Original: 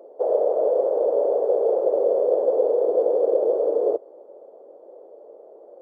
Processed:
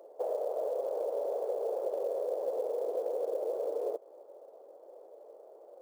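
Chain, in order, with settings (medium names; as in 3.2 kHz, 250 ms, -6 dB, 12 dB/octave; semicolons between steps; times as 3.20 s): high-pass 1.1 kHz 6 dB/octave; compression 3:1, threshold -32 dBFS, peak gain reduction 7.5 dB; short-mantissa float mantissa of 4-bit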